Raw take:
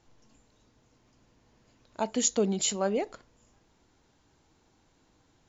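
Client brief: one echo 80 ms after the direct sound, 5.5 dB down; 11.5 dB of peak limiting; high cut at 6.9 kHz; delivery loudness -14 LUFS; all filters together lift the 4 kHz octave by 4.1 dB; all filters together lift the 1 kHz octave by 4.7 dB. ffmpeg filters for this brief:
-af "lowpass=6900,equalizer=f=1000:t=o:g=6,equalizer=f=4000:t=o:g=5.5,alimiter=limit=0.0631:level=0:latency=1,aecho=1:1:80:0.531,volume=8.91"

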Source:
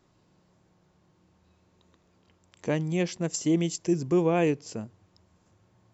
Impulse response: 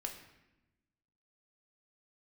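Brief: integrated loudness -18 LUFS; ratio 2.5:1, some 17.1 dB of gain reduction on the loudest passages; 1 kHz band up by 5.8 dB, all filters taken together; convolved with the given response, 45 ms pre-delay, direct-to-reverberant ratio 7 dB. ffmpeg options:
-filter_complex "[0:a]equalizer=f=1000:t=o:g=8.5,acompressor=threshold=0.00562:ratio=2.5,asplit=2[s0][s1];[1:a]atrim=start_sample=2205,adelay=45[s2];[s1][s2]afir=irnorm=-1:irlink=0,volume=0.501[s3];[s0][s3]amix=inputs=2:normalize=0,volume=14.1"

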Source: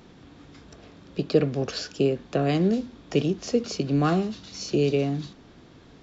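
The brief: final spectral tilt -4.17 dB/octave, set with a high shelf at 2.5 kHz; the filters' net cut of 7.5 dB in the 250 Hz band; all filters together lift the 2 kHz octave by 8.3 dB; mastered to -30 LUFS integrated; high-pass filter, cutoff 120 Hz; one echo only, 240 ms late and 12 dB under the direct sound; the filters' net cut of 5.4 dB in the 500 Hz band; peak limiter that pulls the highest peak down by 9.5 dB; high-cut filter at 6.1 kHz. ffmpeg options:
-af "highpass=120,lowpass=6100,equalizer=f=250:t=o:g=-9,equalizer=f=500:t=o:g=-4,equalizer=f=2000:t=o:g=8.5,highshelf=f=2500:g=6,alimiter=limit=0.0891:level=0:latency=1,aecho=1:1:240:0.251,volume=1.19"

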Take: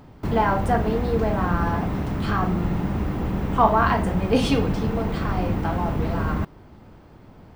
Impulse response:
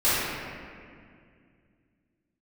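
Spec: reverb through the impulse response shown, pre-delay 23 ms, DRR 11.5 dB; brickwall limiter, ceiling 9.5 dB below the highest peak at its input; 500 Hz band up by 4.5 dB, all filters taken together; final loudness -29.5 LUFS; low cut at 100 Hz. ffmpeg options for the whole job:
-filter_complex "[0:a]highpass=100,equalizer=f=500:t=o:g=5.5,alimiter=limit=0.237:level=0:latency=1,asplit=2[s0][s1];[1:a]atrim=start_sample=2205,adelay=23[s2];[s1][s2]afir=irnorm=-1:irlink=0,volume=0.0355[s3];[s0][s3]amix=inputs=2:normalize=0,volume=0.501"

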